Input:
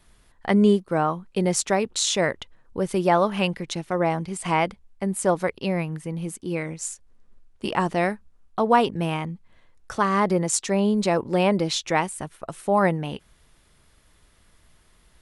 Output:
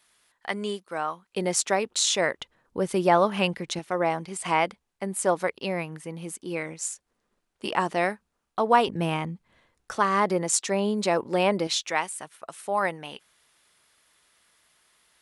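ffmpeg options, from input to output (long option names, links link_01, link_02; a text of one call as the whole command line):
ffmpeg -i in.wav -af "asetnsamples=nb_out_samples=441:pad=0,asendcmd='1.33 highpass f 450;2.39 highpass f 180;3.79 highpass f 410;8.88 highpass f 120;9.92 highpass f 360;11.67 highpass f 1100',highpass=frequency=1500:poles=1" out.wav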